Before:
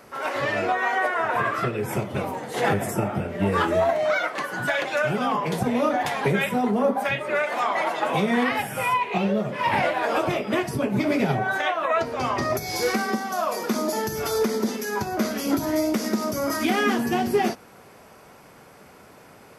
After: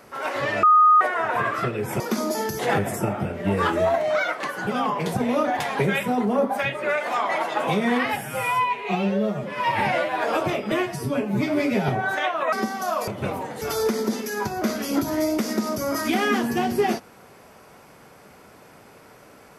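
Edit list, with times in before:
0.63–1.01 s: bleep 1.24 kHz -11 dBFS
2.00–2.54 s: swap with 13.58–14.17 s
4.62–5.13 s: delete
8.71–10.00 s: stretch 1.5×
10.53–11.31 s: stretch 1.5×
11.95–13.03 s: delete

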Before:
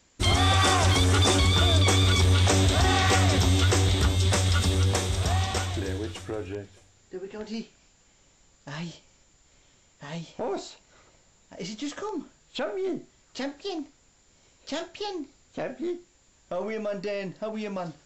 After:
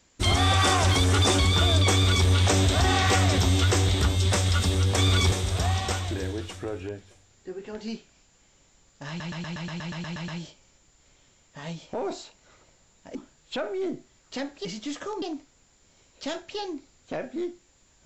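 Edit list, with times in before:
1.93–2.27 s: copy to 4.98 s
8.74 s: stutter 0.12 s, 11 plays
11.61–12.18 s: move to 13.68 s

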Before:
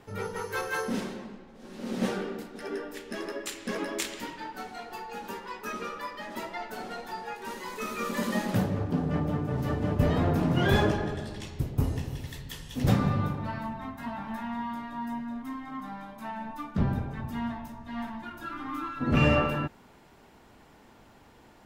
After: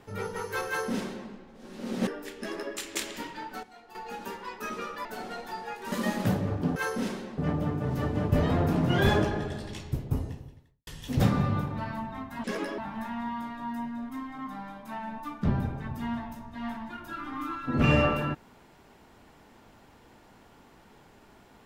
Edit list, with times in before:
0.68–1.30 s: copy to 9.05 s
2.07–2.76 s: delete
3.64–3.98 s: move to 14.11 s
4.66–4.98 s: gain -11 dB
6.08–6.65 s: delete
7.52–8.21 s: delete
11.46–12.54 s: studio fade out

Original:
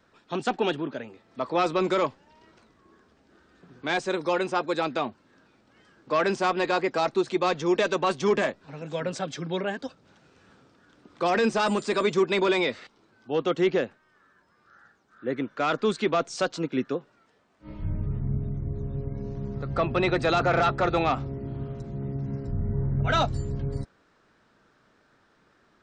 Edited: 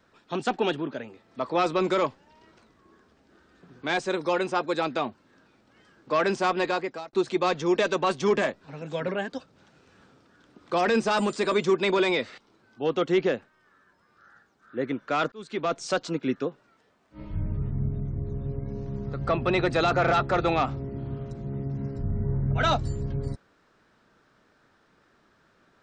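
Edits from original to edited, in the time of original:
6.63–7.13 s: fade out
9.08–9.57 s: delete
15.81–16.29 s: fade in

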